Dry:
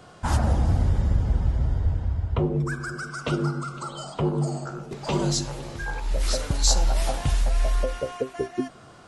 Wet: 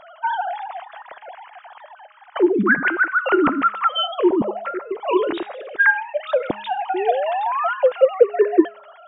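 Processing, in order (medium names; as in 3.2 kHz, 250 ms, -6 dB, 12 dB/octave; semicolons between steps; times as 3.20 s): formants replaced by sine waves; painted sound rise, 6.94–7.74 s, 350–1500 Hz -25 dBFS; de-hum 207.8 Hz, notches 37; trim +3 dB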